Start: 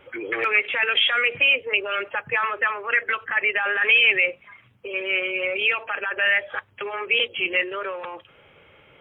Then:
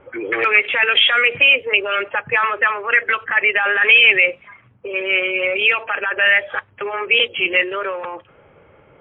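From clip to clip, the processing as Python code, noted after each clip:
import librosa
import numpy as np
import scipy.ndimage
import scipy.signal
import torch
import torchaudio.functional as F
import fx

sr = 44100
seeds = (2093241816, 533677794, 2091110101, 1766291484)

y = fx.env_lowpass(x, sr, base_hz=1200.0, full_db=-16.5)
y = y * librosa.db_to_amplitude(6.0)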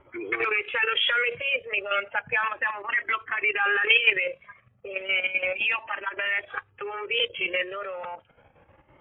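y = fx.level_steps(x, sr, step_db=10)
y = fx.comb_cascade(y, sr, direction='rising', hz=0.33)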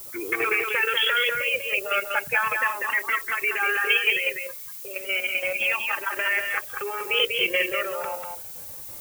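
y = fx.rider(x, sr, range_db=4, speed_s=2.0)
y = fx.dmg_noise_colour(y, sr, seeds[0], colour='violet', level_db=-40.0)
y = y + 10.0 ** (-4.5 / 20.0) * np.pad(y, (int(194 * sr / 1000.0), 0))[:len(y)]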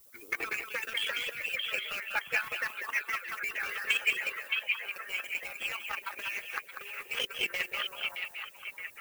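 y = fx.power_curve(x, sr, exponent=1.4)
y = fx.echo_stepped(y, sr, ms=620, hz=2800.0, octaves=-0.7, feedback_pct=70, wet_db=-2.5)
y = fx.hpss(y, sr, part='harmonic', gain_db=-17)
y = y * librosa.db_to_amplitude(-2.5)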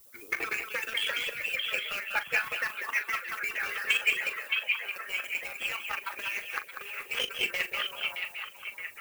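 y = fx.doubler(x, sr, ms=40.0, db=-12.5)
y = y * librosa.db_to_amplitude(2.0)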